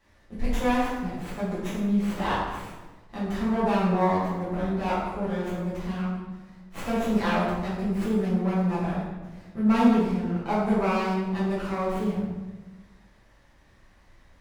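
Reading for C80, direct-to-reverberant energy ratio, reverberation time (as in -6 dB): 2.5 dB, -10.0 dB, 1.2 s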